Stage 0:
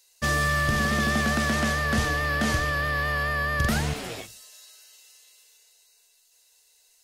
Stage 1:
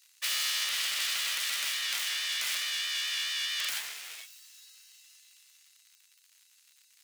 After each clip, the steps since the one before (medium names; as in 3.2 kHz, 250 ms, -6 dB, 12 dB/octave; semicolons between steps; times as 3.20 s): self-modulated delay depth 0.58 ms; crackle 160 per s -42 dBFS; Chebyshev high-pass 2.2 kHz, order 2; trim -2 dB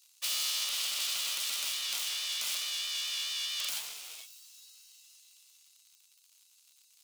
peaking EQ 1.8 kHz -13.5 dB 0.72 oct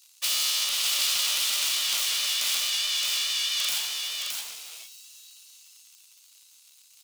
delay 617 ms -4 dB; trim +6.5 dB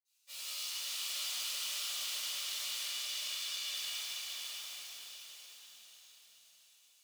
reverberation RT60 5.6 s, pre-delay 46 ms; trim +5 dB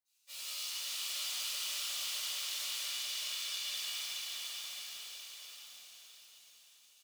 delay 1036 ms -10 dB